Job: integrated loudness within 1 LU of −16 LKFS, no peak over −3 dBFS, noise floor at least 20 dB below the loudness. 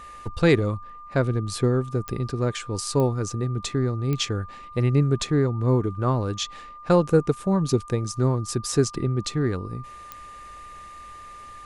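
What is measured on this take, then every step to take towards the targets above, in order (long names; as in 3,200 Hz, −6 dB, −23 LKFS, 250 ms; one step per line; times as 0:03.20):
number of clicks 4; interfering tone 1,200 Hz; level of the tone −40 dBFS; integrated loudness −24.5 LKFS; sample peak −7.0 dBFS; target loudness −16.0 LKFS
→ click removal
notch filter 1,200 Hz, Q 30
level +8.5 dB
brickwall limiter −3 dBFS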